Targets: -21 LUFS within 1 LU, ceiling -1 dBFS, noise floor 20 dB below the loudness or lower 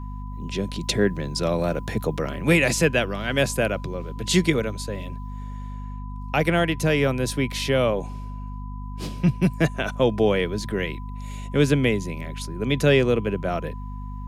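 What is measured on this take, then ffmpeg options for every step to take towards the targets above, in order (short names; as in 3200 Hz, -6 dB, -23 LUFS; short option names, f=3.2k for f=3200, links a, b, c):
hum 50 Hz; harmonics up to 250 Hz; hum level -31 dBFS; steady tone 1000 Hz; tone level -43 dBFS; loudness -23.5 LUFS; peak -5.5 dBFS; loudness target -21.0 LUFS
-> -af "bandreject=f=50:t=h:w=6,bandreject=f=100:t=h:w=6,bandreject=f=150:t=h:w=6,bandreject=f=200:t=h:w=6,bandreject=f=250:t=h:w=6"
-af "bandreject=f=1k:w=30"
-af "volume=2.5dB"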